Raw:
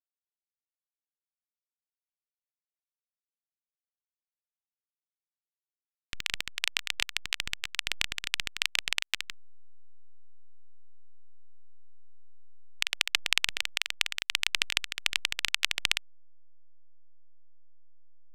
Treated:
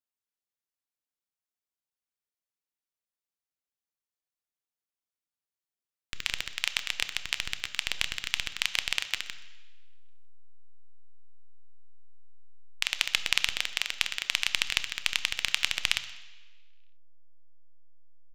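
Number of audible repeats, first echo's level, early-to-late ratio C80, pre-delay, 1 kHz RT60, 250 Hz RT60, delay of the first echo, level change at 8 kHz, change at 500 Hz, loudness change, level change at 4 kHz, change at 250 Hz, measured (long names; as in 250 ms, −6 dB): 1, −21.5 dB, 14.5 dB, 3 ms, 1.2 s, 1.0 s, 125 ms, +0.5 dB, +0.5 dB, +0.5 dB, +0.5 dB, +0.5 dB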